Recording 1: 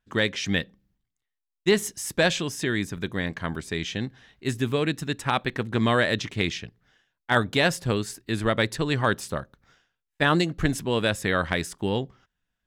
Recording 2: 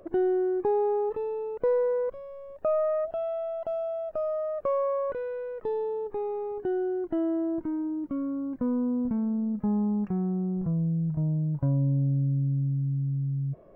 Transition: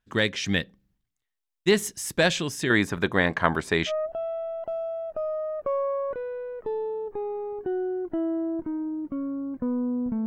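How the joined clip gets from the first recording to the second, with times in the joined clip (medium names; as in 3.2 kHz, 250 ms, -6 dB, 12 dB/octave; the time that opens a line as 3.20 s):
recording 1
2.70–3.92 s: peaking EQ 890 Hz +12.5 dB 2.6 oct
3.89 s: go over to recording 2 from 2.88 s, crossfade 0.06 s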